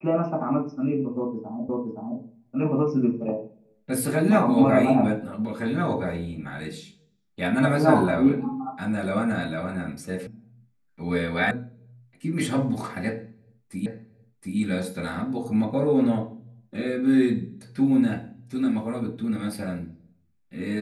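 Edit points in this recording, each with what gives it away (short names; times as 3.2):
1.69 repeat of the last 0.52 s
10.27 sound cut off
11.51 sound cut off
13.86 repeat of the last 0.72 s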